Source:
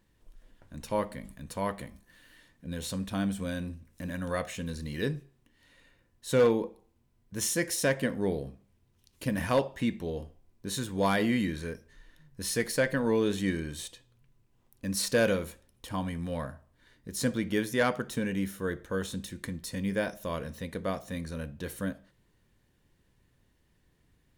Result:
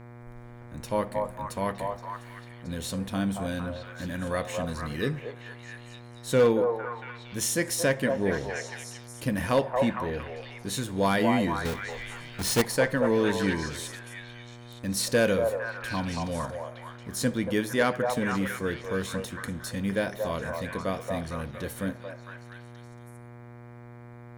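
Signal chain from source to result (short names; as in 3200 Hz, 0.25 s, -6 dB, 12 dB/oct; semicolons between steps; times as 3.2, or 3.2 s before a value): 11.65–12.62 half-waves squared off; delay with a stepping band-pass 0.229 s, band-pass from 730 Hz, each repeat 0.7 oct, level 0 dB; buzz 120 Hz, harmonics 20, -48 dBFS -6 dB/oct; gain +2 dB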